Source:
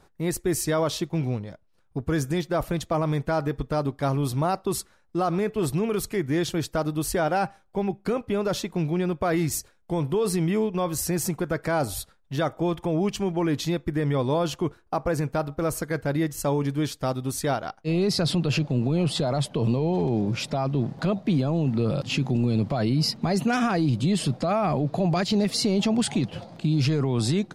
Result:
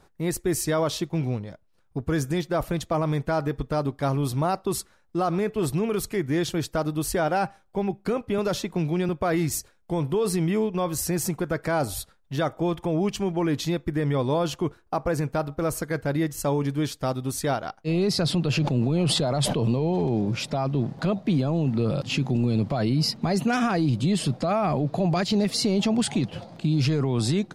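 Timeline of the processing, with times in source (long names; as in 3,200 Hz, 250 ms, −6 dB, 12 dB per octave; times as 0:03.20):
0:08.38–0:09.09: multiband upward and downward compressor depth 40%
0:18.57–0:19.60: level that may fall only so fast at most 27 dB per second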